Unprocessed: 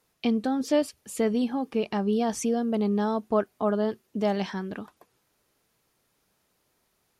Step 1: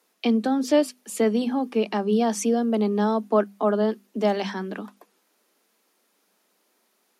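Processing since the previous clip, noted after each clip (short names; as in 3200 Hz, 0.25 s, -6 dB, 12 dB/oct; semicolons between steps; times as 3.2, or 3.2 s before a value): steep high-pass 190 Hz 96 dB/oct; notches 50/100/150/200/250 Hz; gain +4 dB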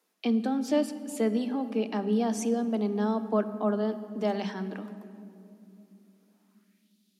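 high-pass sweep 130 Hz -> 3600 Hz, 5.85–6.93; on a send at -11.5 dB: reverb RT60 2.9 s, pre-delay 3 ms; on the sum: gain -7.5 dB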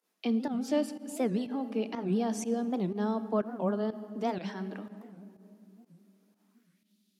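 pump 123 bpm, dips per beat 1, -13 dB, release 91 ms; record warp 78 rpm, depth 250 cents; gain -3 dB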